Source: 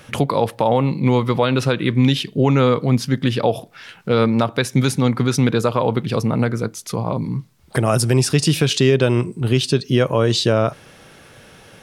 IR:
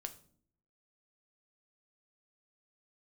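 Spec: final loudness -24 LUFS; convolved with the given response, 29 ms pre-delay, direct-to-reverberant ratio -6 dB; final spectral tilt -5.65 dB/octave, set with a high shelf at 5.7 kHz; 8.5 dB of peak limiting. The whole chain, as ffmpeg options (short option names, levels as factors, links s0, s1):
-filter_complex "[0:a]highshelf=f=5700:g=-5,alimiter=limit=0.237:level=0:latency=1,asplit=2[s0][s1];[1:a]atrim=start_sample=2205,adelay=29[s2];[s1][s2]afir=irnorm=-1:irlink=0,volume=2.82[s3];[s0][s3]amix=inputs=2:normalize=0,volume=0.422"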